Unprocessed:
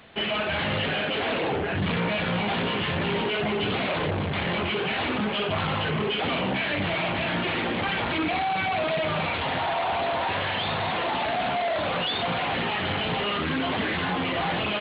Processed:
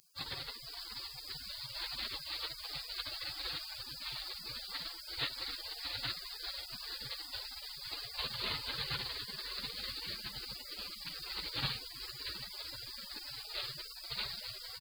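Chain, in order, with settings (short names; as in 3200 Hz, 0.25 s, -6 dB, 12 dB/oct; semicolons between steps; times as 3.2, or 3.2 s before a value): spectral whitening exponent 0.6; bouncing-ball echo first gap 0.64 s, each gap 0.7×, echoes 5; spectral gate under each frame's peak -25 dB weak; bell 130 Hz +14 dB 0.91 oct; gain +5.5 dB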